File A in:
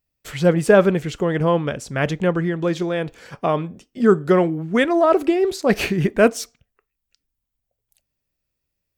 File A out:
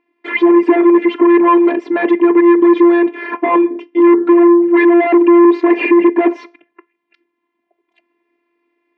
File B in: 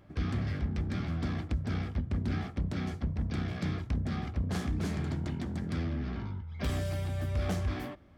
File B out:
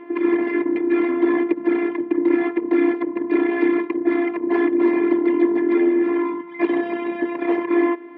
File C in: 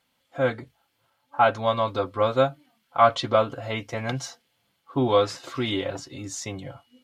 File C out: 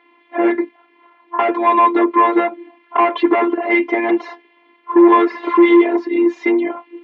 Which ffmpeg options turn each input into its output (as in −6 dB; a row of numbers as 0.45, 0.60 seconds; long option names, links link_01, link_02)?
-filter_complex "[0:a]asplit=2[link_01][link_02];[link_02]acompressor=threshold=-29dB:ratio=6,volume=2dB[link_03];[link_01][link_03]amix=inputs=2:normalize=0,afftfilt=real='hypot(re,im)*cos(PI*b)':imag='0':win_size=512:overlap=0.75,apsyclip=15.5dB,asoftclip=type=tanh:threshold=-10dB,highpass=frequency=250:width=0.5412,highpass=frequency=250:width=1.3066,equalizer=frequency=300:width_type=q:width=4:gain=5,equalizer=frequency=440:width_type=q:width=4:gain=4,equalizer=frequency=670:width_type=q:width=4:gain=-8,equalizer=frequency=960:width_type=q:width=4:gain=7,equalizer=frequency=1400:width_type=q:width=4:gain=-10,equalizer=frequency=2100:width_type=q:width=4:gain=4,lowpass=frequency=2200:width=0.5412,lowpass=frequency=2200:width=1.3066,volume=3dB"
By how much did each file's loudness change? +8.5, +14.0, +10.0 LU